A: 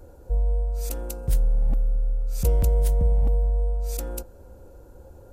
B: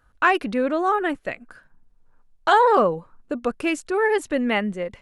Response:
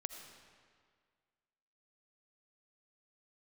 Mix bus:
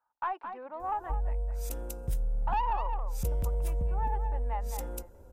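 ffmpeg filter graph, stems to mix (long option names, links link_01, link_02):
-filter_complex "[0:a]bandreject=frequency=4400:width=11,adelay=800,volume=-6dB[link_01];[1:a]bandpass=frequency=890:width_type=q:width=11:csg=0,aeval=exprs='(tanh(8.91*val(0)+0.2)-tanh(0.2))/8.91':channel_layout=same,volume=1dB,asplit=2[link_02][link_03];[link_03]volume=-9dB,aecho=0:1:212:1[link_04];[link_01][link_02][link_04]amix=inputs=3:normalize=0,acompressor=threshold=-28dB:ratio=2.5"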